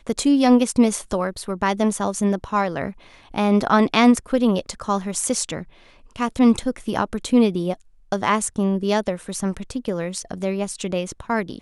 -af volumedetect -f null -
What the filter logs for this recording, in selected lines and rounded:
mean_volume: -21.2 dB
max_volume: -3.1 dB